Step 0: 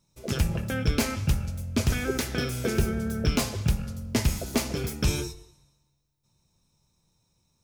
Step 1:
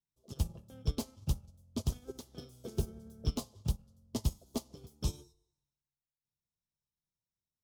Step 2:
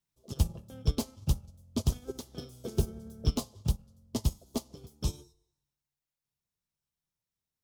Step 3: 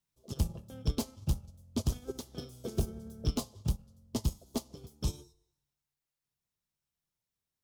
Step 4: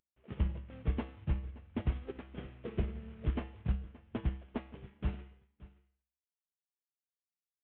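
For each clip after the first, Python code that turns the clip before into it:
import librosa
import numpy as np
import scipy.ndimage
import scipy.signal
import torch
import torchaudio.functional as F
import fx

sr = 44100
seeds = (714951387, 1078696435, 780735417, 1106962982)

y1 = fx.band_shelf(x, sr, hz=1900.0, db=-15.0, octaves=1.1)
y1 = fx.upward_expand(y1, sr, threshold_db=-33.0, expansion=2.5)
y1 = F.gain(torch.from_numpy(y1), -6.0).numpy()
y2 = fx.rider(y1, sr, range_db=4, speed_s=2.0)
y2 = F.gain(torch.from_numpy(y2), 4.5).numpy()
y3 = 10.0 ** (-20.5 / 20.0) * np.tanh(y2 / 10.0 ** (-20.5 / 20.0))
y4 = fx.cvsd(y3, sr, bps=16000)
y4 = fx.comb_fb(y4, sr, f0_hz=66.0, decay_s=0.51, harmonics='odd', damping=0.0, mix_pct=70)
y4 = y4 + 10.0 ** (-19.5 / 20.0) * np.pad(y4, (int(574 * sr / 1000.0), 0))[:len(y4)]
y4 = F.gain(torch.from_numpy(y4), 6.0).numpy()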